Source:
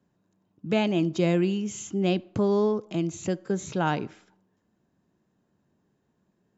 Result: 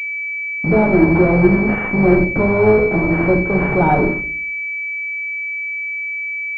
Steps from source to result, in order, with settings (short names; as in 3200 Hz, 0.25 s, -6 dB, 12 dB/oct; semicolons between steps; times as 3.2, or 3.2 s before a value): octaver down 2 oct, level -4 dB; low shelf 440 Hz -10.5 dB; de-hum 84.26 Hz, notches 7; in parallel at -7.5 dB: fuzz box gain 46 dB, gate -52 dBFS; on the sum: reverb RT60 0.45 s, pre-delay 5 ms, DRR 1.5 dB; pulse-width modulation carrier 2300 Hz; gain +4 dB